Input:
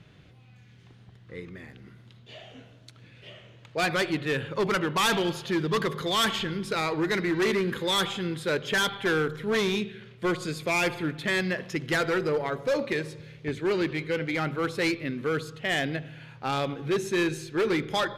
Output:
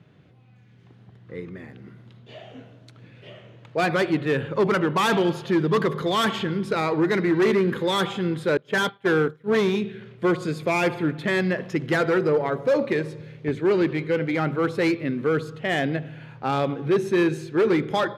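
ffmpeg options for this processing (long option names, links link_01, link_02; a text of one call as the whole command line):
ffmpeg -i in.wav -filter_complex "[0:a]asettb=1/sr,asplit=3[link_01][link_02][link_03];[link_01]atrim=end=8.574[link_04];[link_02]atrim=start=8.57:end=9.84,asetpts=PTS-STARTPTS,afade=type=in:duration=0.004:curve=qsin,afade=type=out:start_time=1.266:duration=0.004:curve=qsin,agate=range=-33dB:threshold=-26dB:ratio=3:release=100:detection=peak[link_05];[link_03]atrim=start=9.836[link_06];[link_04][link_05]acrossfade=duration=0.004:curve1=hsin:curve2=qsin[link_07];[link_07][link_06]acrossfade=duration=0.004:curve1=qsin:curve2=hsin,asettb=1/sr,asplit=3[link_08][link_09][link_10];[link_08]atrim=end=16.764[link_11];[link_09]atrim=start=16.76:end=17.3,asetpts=PTS-STARTPTS,afade=type=in:duration=0.004:curve=qsin,afade=type=out:start_time=0.536:duration=0.004:curve=qsin,bandreject=frequency=7100:width=7.6[link_12];[link_10]atrim=start=17.296[link_13];[link_11][link_12]acrossfade=duration=0.004:curve1=hsin:curve2=qsin[link_14];[link_14][link_13]acrossfade=duration=0.004:curve1=qsin:curve2=hsin,highpass=110,dynaudnorm=framelen=670:gausssize=3:maxgain=5dB,highshelf=frequency=2000:gain=-11.5,volume=1.5dB" out.wav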